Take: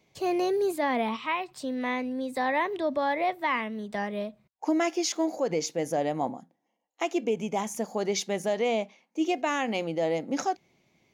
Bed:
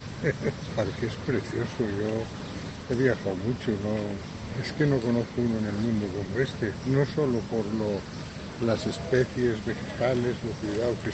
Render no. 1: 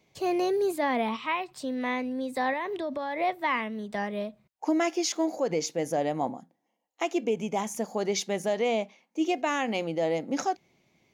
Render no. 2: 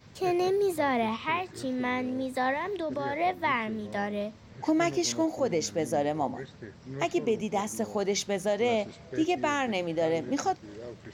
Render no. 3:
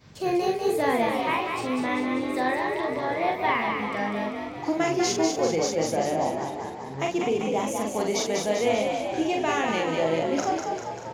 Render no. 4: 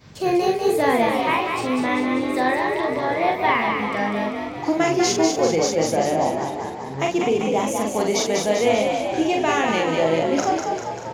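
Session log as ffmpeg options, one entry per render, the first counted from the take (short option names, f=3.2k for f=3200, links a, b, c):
-filter_complex "[0:a]asettb=1/sr,asplit=3[a][b][c];[a]atrim=end=2.534[d];[b]atrim=start=2.53:end=3.19,asetpts=PTS-STARTPTS,afade=t=in:d=0.004:c=qsin,afade=t=out:st=0.656:d=0.004:c=qsin,acompressor=threshold=-28dB:ratio=6:attack=3.2:release=140:knee=1:detection=peak[e];[c]atrim=start=3.186[f];[d][e]acrossfade=d=0.004:c1=hsin:c2=qsin[g];[g][f]acrossfade=d=0.004:c1=qsin:c2=hsin"
-filter_complex "[1:a]volume=-15dB[a];[0:a][a]amix=inputs=2:normalize=0"
-filter_complex "[0:a]asplit=2[a][b];[b]adelay=43,volume=-3dB[c];[a][c]amix=inputs=2:normalize=0,asplit=9[d][e][f][g][h][i][j][k][l];[e]adelay=196,afreqshift=47,volume=-4.5dB[m];[f]adelay=392,afreqshift=94,volume=-9.1dB[n];[g]adelay=588,afreqshift=141,volume=-13.7dB[o];[h]adelay=784,afreqshift=188,volume=-18.2dB[p];[i]adelay=980,afreqshift=235,volume=-22.8dB[q];[j]adelay=1176,afreqshift=282,volume=-27.4dB[r];[k]adelay=1372,afreqshift=329,volume=-32dB[s];[l]adelay=1568,afreqshift=376,volume=-36.6dB[t];[d][m][n][o][p][q][r][s][t]amix=inputs=9:normalize=0"
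-af "volume=5dB"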